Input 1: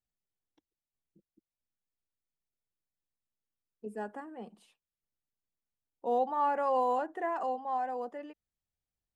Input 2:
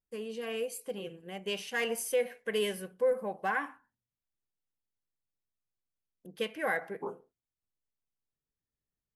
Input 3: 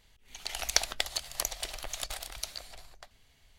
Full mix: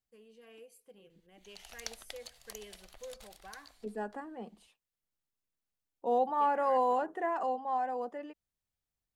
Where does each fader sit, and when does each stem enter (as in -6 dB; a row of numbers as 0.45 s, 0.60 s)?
+0.5 dB, -19.0 dB, -16.0 dB; 0.00 s, 0.00 s, 1.10 s